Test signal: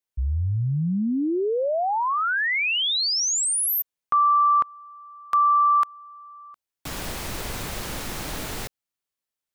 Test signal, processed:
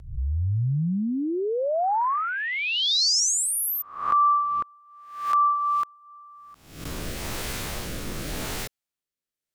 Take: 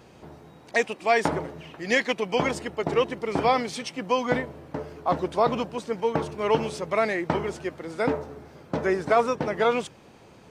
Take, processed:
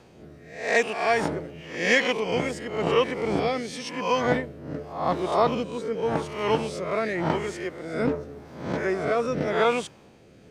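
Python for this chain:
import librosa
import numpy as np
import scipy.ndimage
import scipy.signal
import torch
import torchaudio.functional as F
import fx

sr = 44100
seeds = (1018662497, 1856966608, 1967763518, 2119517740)

y = fx.spec_swells(x, sr, rise_s=0.63)
y = fx.rotary(y, sr, hz=0.9)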